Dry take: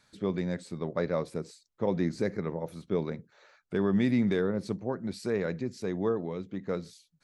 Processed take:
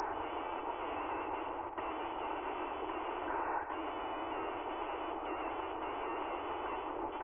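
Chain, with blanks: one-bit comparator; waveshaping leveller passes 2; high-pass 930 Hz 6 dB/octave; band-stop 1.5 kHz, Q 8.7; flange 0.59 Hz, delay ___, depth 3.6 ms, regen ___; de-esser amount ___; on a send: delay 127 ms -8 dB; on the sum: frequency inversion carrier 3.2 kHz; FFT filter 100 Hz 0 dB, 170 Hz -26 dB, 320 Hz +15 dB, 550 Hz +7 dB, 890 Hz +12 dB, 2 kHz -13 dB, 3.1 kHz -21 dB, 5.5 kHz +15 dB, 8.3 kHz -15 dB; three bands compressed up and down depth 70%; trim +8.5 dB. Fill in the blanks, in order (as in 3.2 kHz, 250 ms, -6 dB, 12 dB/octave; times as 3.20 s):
9.4 ms, -70%, 100%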